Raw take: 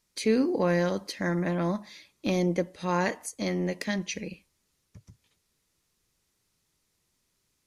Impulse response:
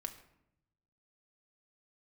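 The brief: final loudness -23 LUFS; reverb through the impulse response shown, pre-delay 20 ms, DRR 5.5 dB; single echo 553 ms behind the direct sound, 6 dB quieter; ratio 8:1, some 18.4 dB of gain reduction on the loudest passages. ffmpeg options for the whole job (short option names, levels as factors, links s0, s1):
-filter_complex "[0:a]acompressor=threshold=0.01:ratio=8,aecho=1:1:553:0.501,asplit=2[s0][s1];[1:a]atrim=start_sample=2205,adelay=20[s2];[s1][s2]afir=irnorm=-1:irlink=0,volume=0.668[s3];[s0][s3]amix=inputs=2:normalize=0,volume=10"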